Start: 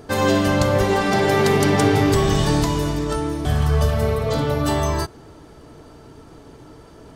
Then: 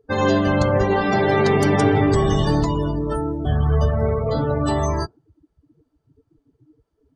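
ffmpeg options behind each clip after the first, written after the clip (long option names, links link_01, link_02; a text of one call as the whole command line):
ffmpeg -i in.wav -af "afftdn=noise_reduction=33:noise_floor=-27" out.wav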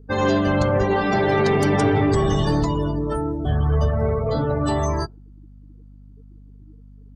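ffmpeg -i in.wav -af "aeval=exprs='val(0)+0.00708*(sin(2*PI*50*n/s)+sin(2*PI*2*50*n/s)/2+sin(2*PI*3*50*n/s)/3+sin(2*PI*4*50*n/s)/4+sin(2*PI*5*50*n/s)/5)':channel_layout=same,acontrast=73,volume=-7dB" out.wav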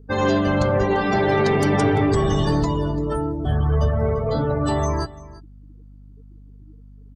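ffmpeg -i in.wav -af "aecho=1:1:342:0.106" out.wav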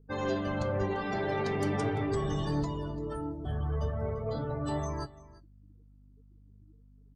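ffmpeg -i in.wav -af "flanger=delay=6.1:depth=6.1:regen=72:speed=0.41:shape=triangular,volume=-8dB" out.wav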